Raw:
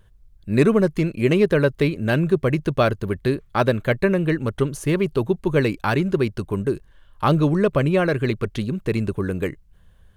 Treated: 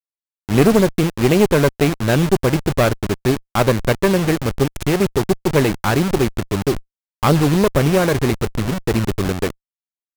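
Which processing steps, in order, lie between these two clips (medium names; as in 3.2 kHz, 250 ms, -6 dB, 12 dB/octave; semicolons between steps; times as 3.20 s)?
send-on-delta sampling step -22 dBFS; one-sided clip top -21 dBFS; trim +5.5 dB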